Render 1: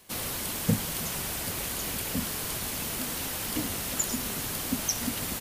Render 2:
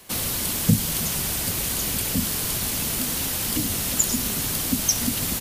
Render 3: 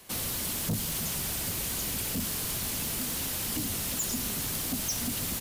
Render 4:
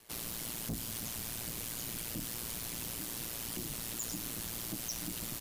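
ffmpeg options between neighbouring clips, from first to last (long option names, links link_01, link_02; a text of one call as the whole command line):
ffmpeg -i in.wav -filter_complex "[0:a]acrossover=split=290|3000[link_01][link_02][link_03];[link_02]acompressor=threshold=-43dB:ratio=6[link_04];[link_01][link_04][link_03]amix=inputs=3:normalize=0,volume=8dB" out.wav
ffmpeg -i in.wav -af "asoftclip=type=tanh:threshold=-21.5dB,volume=-4.5dB" out.wav
ffmpeg -i in.wav -af "aeval=exprs='val(0)*sin(2*PI*58*n/s)':channel_layout=same,volume=-5dB" out.wav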